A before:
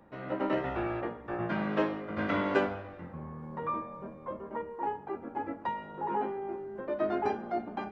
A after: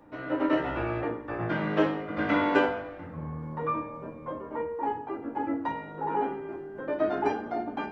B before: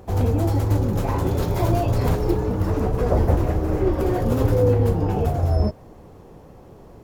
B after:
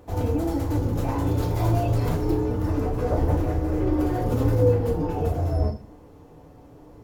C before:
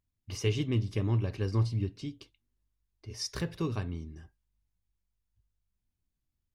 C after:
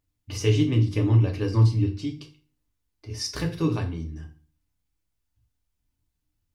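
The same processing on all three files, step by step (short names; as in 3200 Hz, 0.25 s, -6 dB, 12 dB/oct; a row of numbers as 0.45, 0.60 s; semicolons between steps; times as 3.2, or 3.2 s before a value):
notches 50/100/150/200 Hz; FDN reverb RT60 0.38 s, low-frequency decay 1.35×, high-frequency decay 0.9×, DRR 2 dB; normalise peaks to -9 dBFS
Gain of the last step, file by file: +1.5, -6.0, +4.0 dB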